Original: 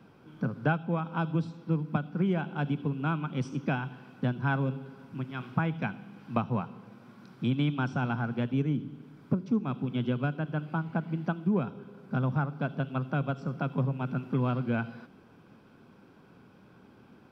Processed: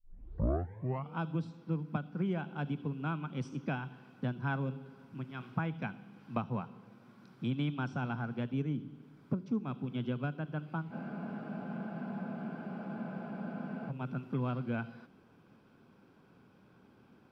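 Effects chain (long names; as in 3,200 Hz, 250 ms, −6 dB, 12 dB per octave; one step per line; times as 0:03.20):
turntable start at the beginning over 1.18 s
frozen spectrum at 0:10.93, 2.96 s
level −6 dB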